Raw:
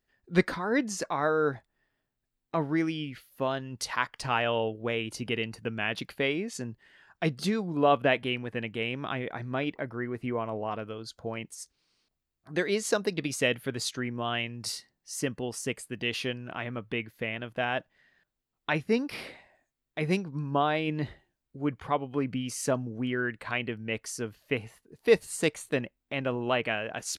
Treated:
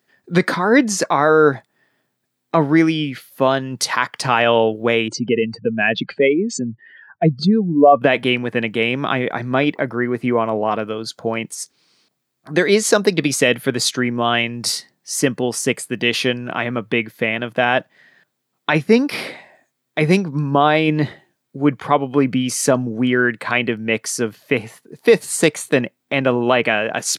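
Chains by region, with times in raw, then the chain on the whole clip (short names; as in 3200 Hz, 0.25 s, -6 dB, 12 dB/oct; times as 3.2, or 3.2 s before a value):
5.08–8.02 spectral contrast raised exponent 2.1 + brick-wall FIR low-pass 8700 Hz
whole clip: HPF 130 Hz 24 dB/oct; notch 2800 Hz, Q 19; maximiser +15 dB; gain -1 dB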